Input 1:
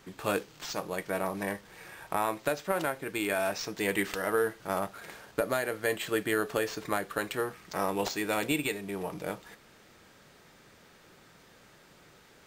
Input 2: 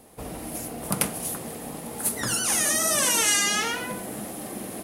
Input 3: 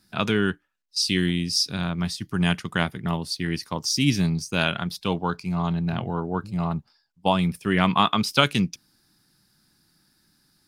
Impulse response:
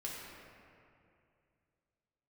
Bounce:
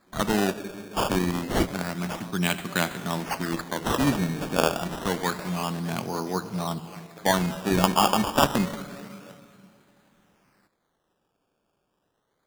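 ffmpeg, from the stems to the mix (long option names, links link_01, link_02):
-filter_complex "[0:a]volume=-16.5dB[link_01];[1:a]adelay=1900,volume=-19dB,asplit=2[link_02][link_03];[link_03]volume=-4.5dB[link_04];[2:a]volume=-2dB,asplit=3[link_05][link_06][link_07];[link_06]volume=-7.5dB[link_08];[link_07]apad=whole_len=296999[link_09];[link_02][link_09]sidechaincompress=threshold=-33dB:ratio=8:attack=16:release=166[link_10];[3:a]atrim=start_sample=2205[link_11];[link_04][link_08]amix=inputs=2:normalize=0[link_12];[link_12][link_11]afir=irnorm=-1:irlink=0[link_13];[link_01][link_10][link_05][link_13]amix=inputs=4:normalize=0,highpass=180,acrusher=samples=15:mix=1:aa=0.000001:lfo=1:lforange=15:lforate=0.28"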